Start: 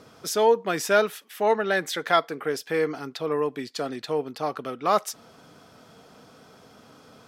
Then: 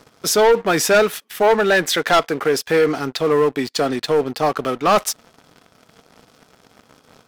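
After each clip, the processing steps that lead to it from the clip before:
leveller curve on the samples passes 3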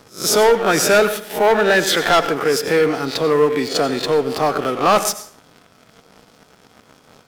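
peak hold with a rise ahead of every peak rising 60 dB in 0.31 s
dense smooth reverb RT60 0.51 s, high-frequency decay 0.75×, pre-delay 75 ms, DRR 11 dB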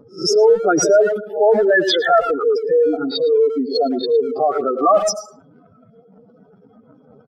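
expanding power law on the bin magnitudes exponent 3.7
far-end echo of a speakerphone 110 ms, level −13 dB
level +1.5 dB

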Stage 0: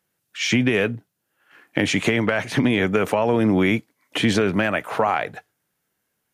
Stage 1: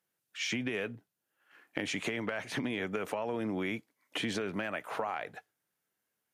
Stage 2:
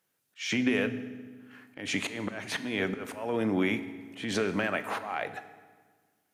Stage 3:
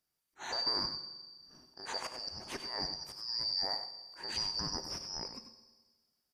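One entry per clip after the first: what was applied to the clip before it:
low-shelf EQ 150 Hz −9.5 dB; downward compressor 3 to 1, threshold −23 dBFS, peak gain reduction 6 dB; level −9 dB
volume swells 223 ms; convolution reverb RT60 1.5 s, pre-delay 4 ms, DRR 10 dB; level +6 dB
band-splitting scrambler in four parts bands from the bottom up 2341; single-tap delay 96 ms −9.5 dB; level −8 dB

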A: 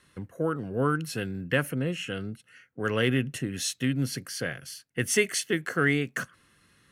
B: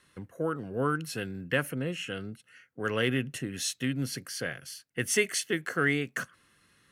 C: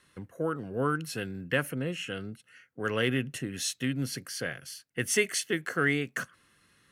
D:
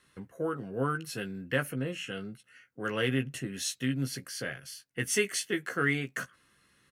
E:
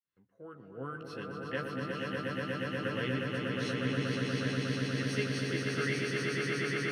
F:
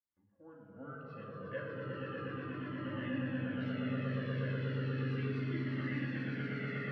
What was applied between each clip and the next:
low-shelf EQ 260 Hz −4 dB; level −1.5 dB
no processing that can be heard
double-tracking delay 15 ms −6.5 dB; level −2.5 dB
fade in at the beginning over 1.17 s; Savitzky-Golay smoothing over 15 samples; echo that builds up and dies away 120 ms, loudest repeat 8, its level −3.5 dB; level −8 dB
high-frequency loss of the air 440 metres; rectangular room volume 2,400 cubic metres, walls mixed, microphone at 2.4 metres; flanger whose copies keep moving one way falling 0.35 Hz; level −3 dB

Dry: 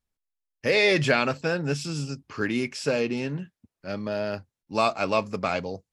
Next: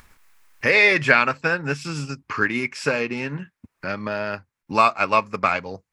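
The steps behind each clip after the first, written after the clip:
flat-topped bell 1,500 Hz +9 dB
in parallel at +2 dB: upward compression, threshold −21 dBFS
on the sum: transient designer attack +3 dB, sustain −4 dB
level −7.5 dB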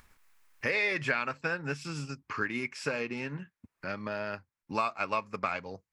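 downward compressor 2.5 to 1, threshold −19 dBFS, peak gain reduction 6.5 dB
level −8.5 dB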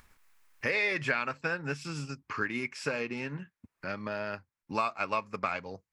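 no processing that can be heard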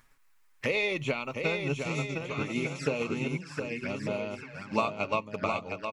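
on a send: bouncing-ball delay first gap 710 ms, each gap 0.7×, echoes 5
on the sum: flanger swept by the level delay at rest 8.3 ms, full sweep at −30.5 dBFS
expander for the loud parts 1.5 to 1, over −42 dBFS
level +6.5 dB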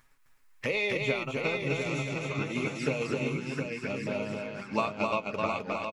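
double-tracking delay 15 ms −12.5 dB
single-tap delay 260 ms −3.5 dB
level −1.5 dB

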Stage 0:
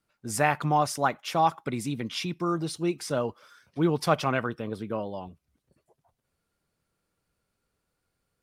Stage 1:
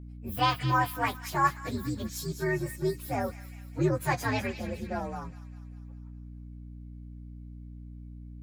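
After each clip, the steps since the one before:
partials spread apart or drawn together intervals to 127%
delay with a high-pass on its return 201 ms, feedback 53%, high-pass 2,000 Hz, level −9.5 dB
mains hum 60 Hz, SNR 11 dB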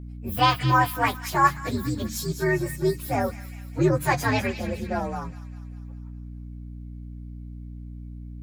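hum removal 73.72 Hz, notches 4
level +6 dB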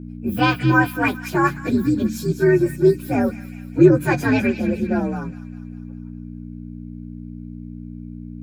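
hollow resonant body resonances 220/320/1,500/2,400 Hz, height 14 dB, ringing for 25 ms
level −3.5 dB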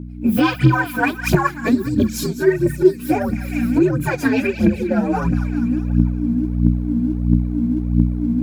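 camcorder AGC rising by 46 dB per second
phase shifter 1.5 Hz, delay 4.7 ms, feedback 69%
level −4.5 dB

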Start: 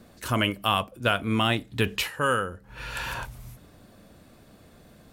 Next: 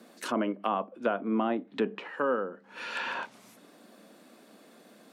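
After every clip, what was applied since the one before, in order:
treble cut that deepens with the level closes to 860 Hz, closed at −23.5 dBFS
Butterworth high-pass 210 Hz 36 dB per octave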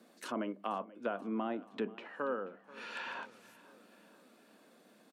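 repeating echo 483 ms, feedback 57%, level −20 dB
level −8 dB

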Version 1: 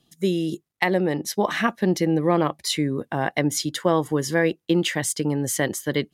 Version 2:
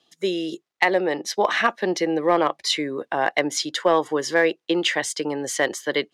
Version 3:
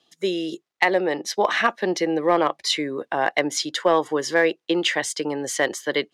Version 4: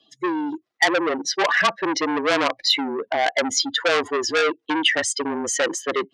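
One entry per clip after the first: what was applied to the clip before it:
three-way crossover with the lows and the highs turned down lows −21 dB, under 350 Hz, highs −18 dB, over 6,900 Hz; in parallel at −4 dB: gain into a clipping stage and back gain 14.5 dB
no processing that can be heard
expanding power law on the bin magnitudes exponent 1.9; frequency shifter −29 Hz; saturating transformer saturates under 3,100 Hz; level +4.5 dB

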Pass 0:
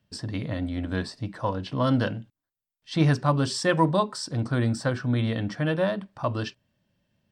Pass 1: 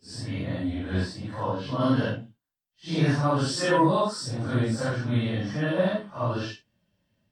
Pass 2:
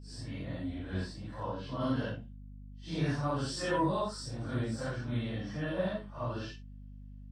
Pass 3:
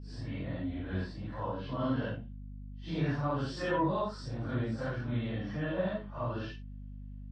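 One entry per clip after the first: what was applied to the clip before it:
random phases in long frames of 200 ms
mains hum 50 Hz, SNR 12 dB; level −9 dB
low-pass filter 3,300 Hz 12 dB per octave; in parallel at −2 dB: downward compressor, threshold −40 dBFS, peak gain reduction 14 dB; on the sum: level −1.5 dB

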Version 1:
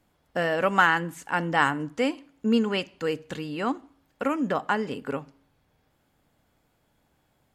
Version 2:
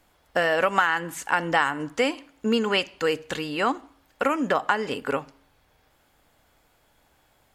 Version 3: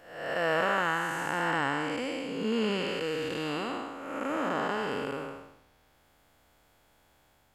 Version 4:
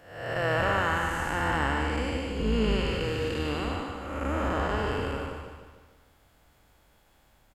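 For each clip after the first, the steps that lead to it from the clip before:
parametric band 170 Hz −10 dB 2.3 octaves; downward compressor 6 to 1, threshold −26 dBFS, peak gain reduction 11 dB; level +8.5 dB
spectrum smeared in time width 385 ms
sub-octave generator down 2 octaves, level +4 dB; repeating echo 150 ms, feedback 50%, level −6.5 dB

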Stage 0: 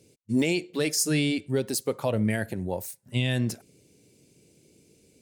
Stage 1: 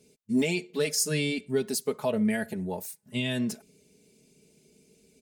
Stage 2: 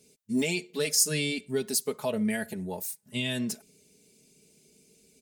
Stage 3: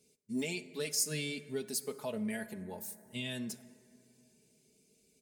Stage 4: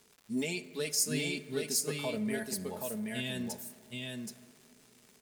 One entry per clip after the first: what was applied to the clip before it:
comb filter 4.7 ms, depth 77%; level −3.5 dB
high-shelf EQ 3,200 Hz +7.5 dB; level −2.5 dB
dense smooth reverb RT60 2.9 s, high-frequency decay 0.35×, DRR 14 dB; level −8.5 dB
surface crackle 310 per second −50 dBFS; single-tap delay 775 ms −3.5 dB; level +2 dB

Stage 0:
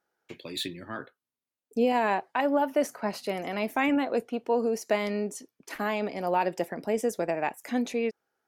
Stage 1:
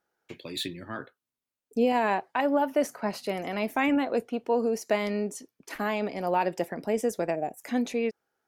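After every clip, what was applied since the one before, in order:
low-shelf EQ 110 Hz +5 dB
gain on a spectral selection 0:07.36–0:07.57, 790–5,600 Hz −18 dB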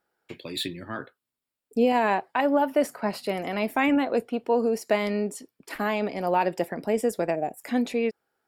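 notch filter 6,200 Hz, Q 5.1
level +2.5 dB

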